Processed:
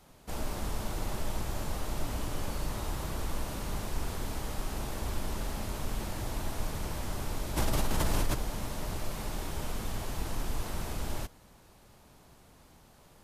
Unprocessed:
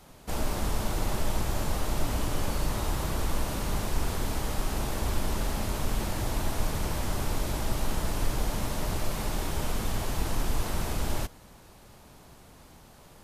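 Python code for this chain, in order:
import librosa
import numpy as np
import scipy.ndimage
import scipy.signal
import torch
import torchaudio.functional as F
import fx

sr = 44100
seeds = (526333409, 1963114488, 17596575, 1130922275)

y = fx.env_flatten(x, sr, amount_pct=100, at=(7.56, 8.33), fade=0.02)
y = F.gain(torch.from_numpy(y), -5.5).numpy()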